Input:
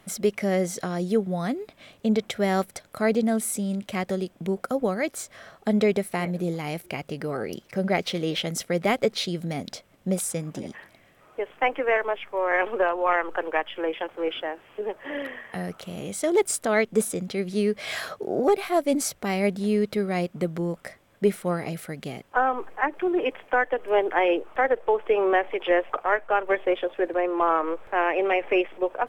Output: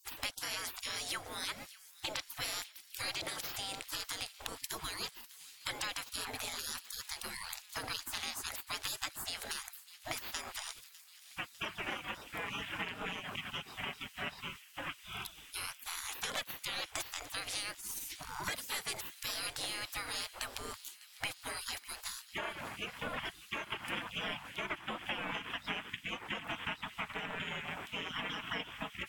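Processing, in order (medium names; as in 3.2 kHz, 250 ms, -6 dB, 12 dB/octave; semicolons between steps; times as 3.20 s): spectral gate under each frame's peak -30 dB weak; compression 3:1, threshold -51 dBFS, peak gain reduction 11 dB; on a send: feedback echo behind a high-pass 601 ms, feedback 77%, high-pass 2 kHz, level -18 dB; on the sum: trim +13.5 dB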